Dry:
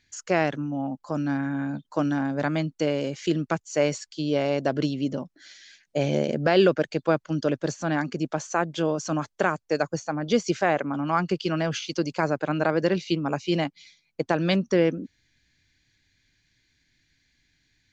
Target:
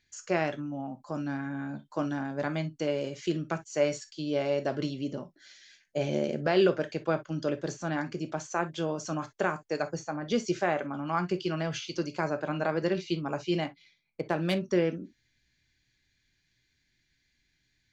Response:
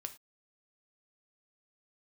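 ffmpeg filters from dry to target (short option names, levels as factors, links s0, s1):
-filter_complex "[1:a]atrim=start_sample=2205,atrim=end_sample=3087[s0];[0:a][s0]afir=irnorm=-1:irlink=0,asettb=1/sr,asplit=3[s1][s2][s3];[s1]atrim=end=13.664[s4];[s2]atrim=start=13.66:end=14.61,asetpts=PTS-STARTPTS,afade=t=in:d=0.004:c=qsin,afade=t=out:st=0.946:d=0.004:c=qsin,adynamicsmooth=sensitivity=6:basefreq=3400[s5];[s3]atrim=start=14.606[s6];[s4][s5]acrossfade=d=0.004:c1=hsin:c2=qsin[s7];[s7][s6]acrossfade=d=0.004:c1=qsin:c2=hsin,volume=0.75"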